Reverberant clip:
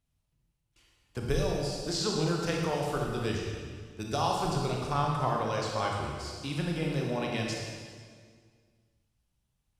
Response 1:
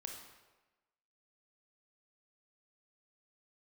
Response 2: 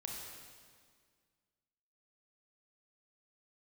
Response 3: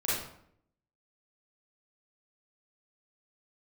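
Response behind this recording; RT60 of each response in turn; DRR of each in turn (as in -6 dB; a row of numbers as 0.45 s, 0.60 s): 2; 1.2 s, 1.9 s, 0.70 s; 2.0 dB, -1.0 dB, -9.0 dB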